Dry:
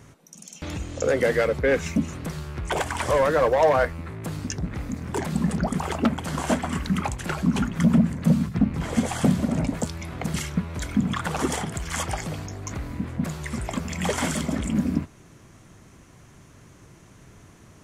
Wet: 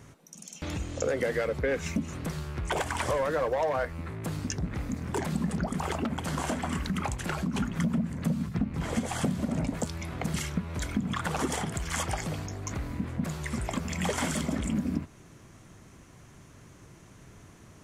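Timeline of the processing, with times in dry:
5.65–7.60 s: compression, threshold -22 dBFS
whole clip: compression, threshold -23 dBFS; trim -2 dB

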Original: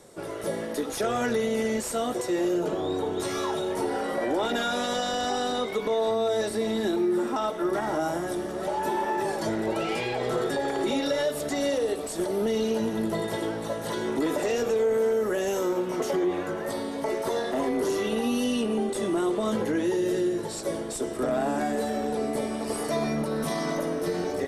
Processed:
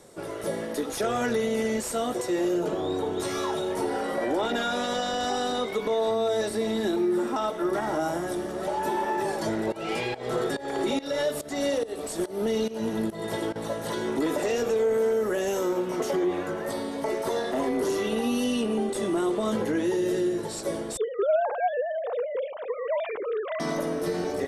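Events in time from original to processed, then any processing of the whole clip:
4.41–5.21 s: treble shelf 7.3 kHz -5.5 dB
9.72–13.56 s: volume shaper 142 bpm, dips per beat 1, -18 dB, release 272 ms
20.97–23.60 s: formants replaced by sine waves

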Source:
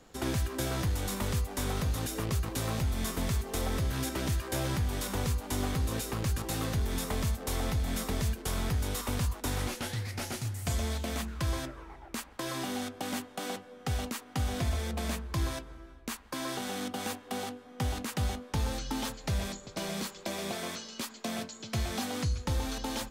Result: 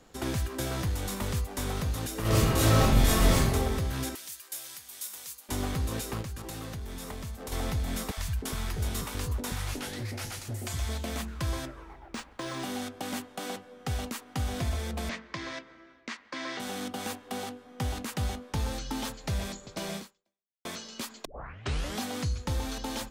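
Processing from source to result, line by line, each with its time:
2.21–3.52 s: reverb throw, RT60 0.91 s, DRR -10.5 dB
4.15–5.49 s: differentiator
6.21–7.52 s: compression 4:1, threshold -36 dBFS
8.11–10.89 s: three bands offset in time highs, lows, mids 60/310 ms, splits 160/660 Hz
11.93–12.63 s: decimation joined by straight lines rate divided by 3×
15.09–16.60 s: cabinet simulation 240–5800 Hz, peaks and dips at 410 Hz -5 dB, 820 Hz -5 dB, 2 kHz +9 dB
19.96–20.65 s: fade out exponential
21.25 s: tape start 0.74 s

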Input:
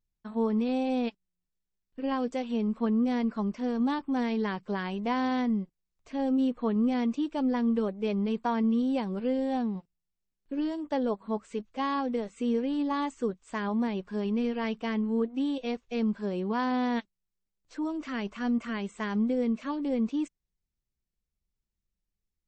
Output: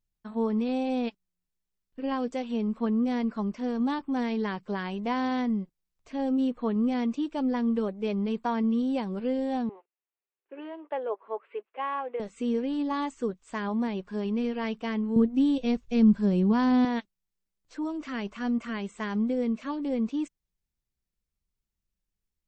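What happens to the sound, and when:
9.69–12.20 s: elliptic band-pass 390–2700 Hz
15.16–16.85 s: tone controls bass +15 dB, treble +4 dB

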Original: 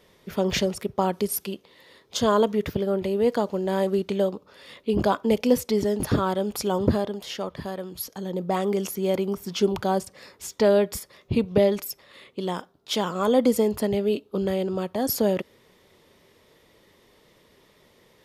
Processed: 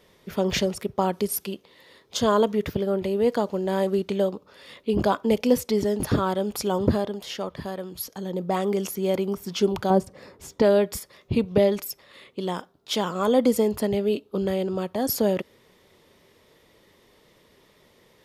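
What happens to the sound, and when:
9.90–10.62 s: tilt shelf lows +7 dB, about 1.2 kHz

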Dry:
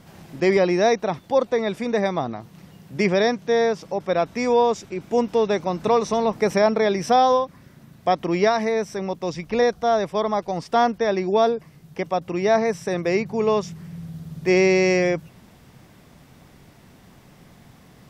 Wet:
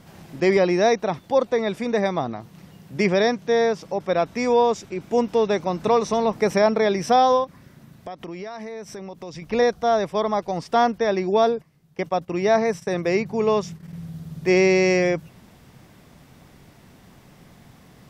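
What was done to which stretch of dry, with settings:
7.44–9.42 s: compression, threshold -32 dBFS
11.43–14.08 s: gate -39 dBFS, range -12 dB

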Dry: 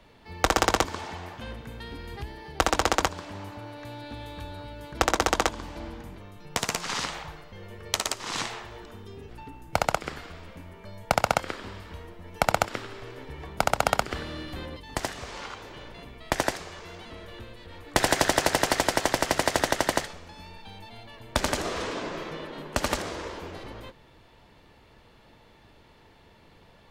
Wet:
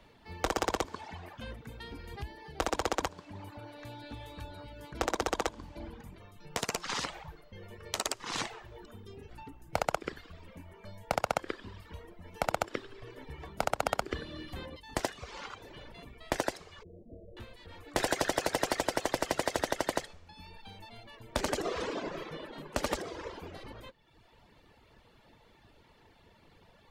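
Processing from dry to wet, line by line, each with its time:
16.83–17.37 s: elliptic low-pass 600 Hz, stop band 60 dB
whole clip: reverb removal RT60 0.91 s; dynamic bell 440 Hz, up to +5 dB, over -39 dBFS, Q 0.88; peak limiter -12.5 dBFS; trim -3 dB

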